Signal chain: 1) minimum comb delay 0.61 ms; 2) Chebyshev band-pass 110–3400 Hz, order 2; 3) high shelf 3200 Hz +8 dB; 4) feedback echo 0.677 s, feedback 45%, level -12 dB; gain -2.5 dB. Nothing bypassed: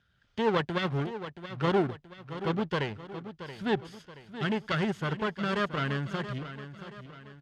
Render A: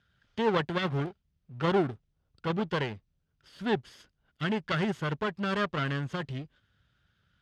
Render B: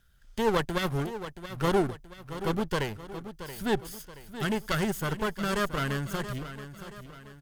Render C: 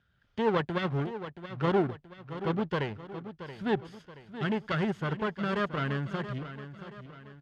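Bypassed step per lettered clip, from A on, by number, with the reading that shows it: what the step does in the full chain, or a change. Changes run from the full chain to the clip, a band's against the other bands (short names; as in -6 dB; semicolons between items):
4, echo-to-direct -11.0 dB to none; 2, momentary loudness spread change -1 LU; 3, 4 kHz band -4.0 dB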